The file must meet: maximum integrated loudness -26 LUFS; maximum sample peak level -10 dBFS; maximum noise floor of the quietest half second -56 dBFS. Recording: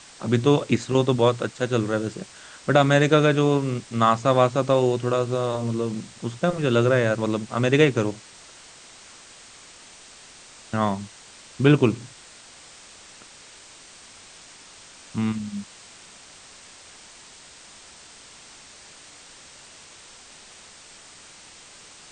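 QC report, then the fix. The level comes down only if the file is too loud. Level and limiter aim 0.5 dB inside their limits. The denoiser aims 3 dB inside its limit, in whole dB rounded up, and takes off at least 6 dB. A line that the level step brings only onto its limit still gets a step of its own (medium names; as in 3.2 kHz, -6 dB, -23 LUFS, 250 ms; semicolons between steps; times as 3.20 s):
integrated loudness -22.0 LUFS: fail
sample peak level -4.0 dBFS: fail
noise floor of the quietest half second -47 dBFS: fail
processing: noise reduction 8 dB, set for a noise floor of -47 dBFS; trim -4.5 dB; peak limiter -10.5 dBFS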